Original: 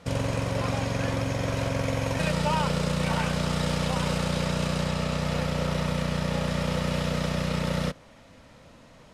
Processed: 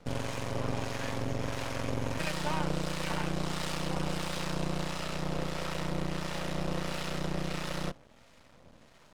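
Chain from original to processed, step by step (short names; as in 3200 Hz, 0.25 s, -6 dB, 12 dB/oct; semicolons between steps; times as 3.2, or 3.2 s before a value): harmonic tremolo 1.5 Hz, depth 50%, crossover 690 Hz; half-wave rectifier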